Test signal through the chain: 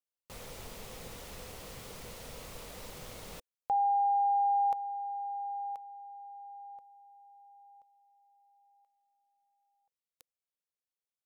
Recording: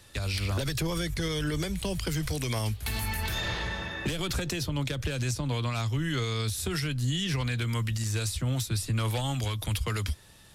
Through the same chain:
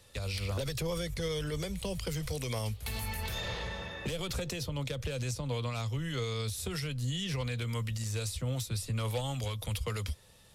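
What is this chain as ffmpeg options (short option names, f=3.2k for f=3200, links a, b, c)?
-af "equalizer=f=315:t=o:w=0.33:g=-7,equalizer=f=500:t=o:w=0.33:g=8,equalizer=f=1.6k:t=o:w=0.33:g=-5,volume=-5dB"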